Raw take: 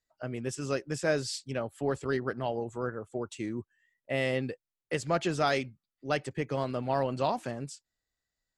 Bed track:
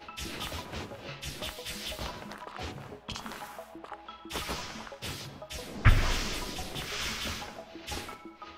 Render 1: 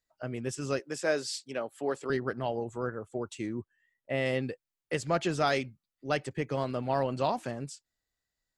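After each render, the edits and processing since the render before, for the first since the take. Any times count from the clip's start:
0:00.79–0:02.10: high-pass filter 280 Hz
0:03.47–0:04.26: high-shelf EQ 4,200 Hz −8 dB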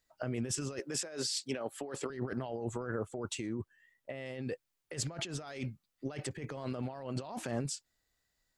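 compressor whose output falls as the input rises −39 dBFS, ratio −1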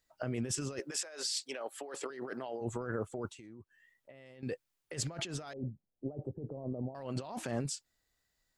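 0:00.90–0:02.60: high-pass filter 690 Hz → 280 Hz
0:03.30–0:04.43: downward compressor 2 to 1, threshold −60 dBFS
0:05.53–0:06.95: inverse Chebyshev low-pass filter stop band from 1,800 Hz, stop band 50 dB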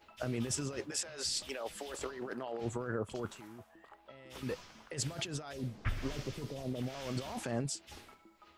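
mix in bed track −14.5 dB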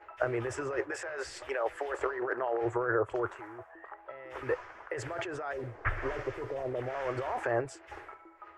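drawn EQ curve 120 Hz 0 dB, 190 Hz −24 dB, 350 Hz +8 dB, 1,800 Hz +12 dB, 3,900 Hz −13 dB, 7,500 Hz −10 dB, 13,000 Hz −17 dB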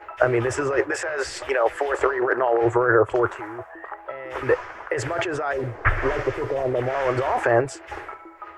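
level +11.5 dB

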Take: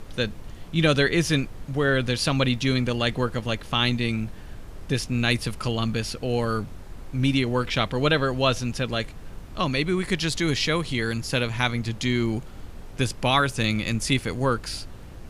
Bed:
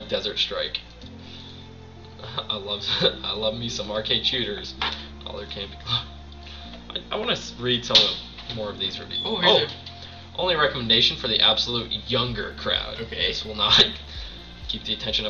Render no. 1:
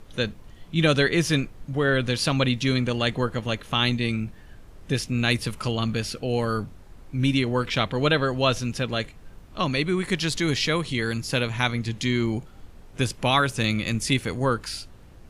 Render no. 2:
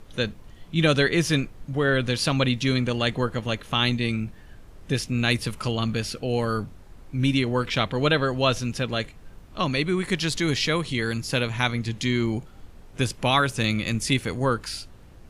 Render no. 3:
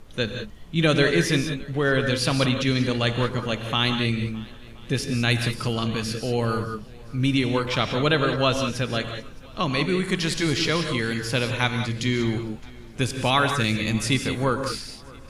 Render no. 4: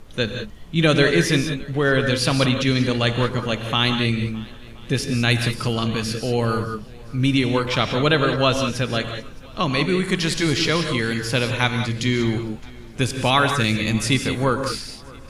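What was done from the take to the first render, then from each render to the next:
noise reduction from a noise print 7 dB
no processing that can be heard
feedback echo with a long and a short gap by turns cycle 1,026 ms, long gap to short 1.5 to 1, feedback 31%, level −23.5 dB; reverb whose tail is shaped and stops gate 210 ms rising, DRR 6 dB
level +3 dB

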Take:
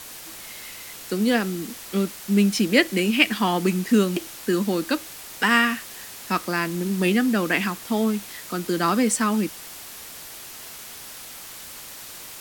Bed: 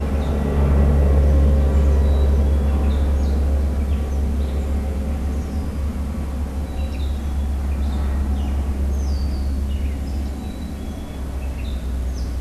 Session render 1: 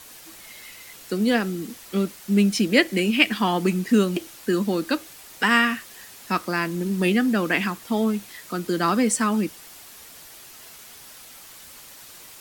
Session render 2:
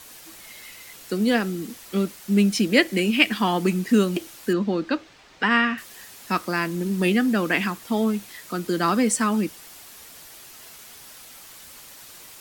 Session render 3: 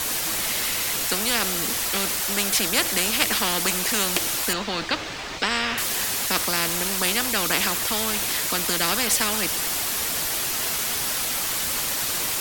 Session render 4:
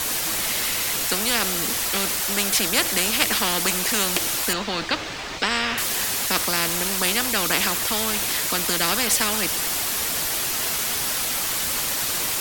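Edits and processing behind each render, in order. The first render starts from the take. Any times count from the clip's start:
broadband denoise 6 dB, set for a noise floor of −40 dBFS
0:04.53–0:05.78: high-frequency loss of the air 160 metres
every bin compressed towards the loudest bin 4 to 1
level +1 dB; brickwall limiter −1 dBFS, peak gain reduction 1 dB

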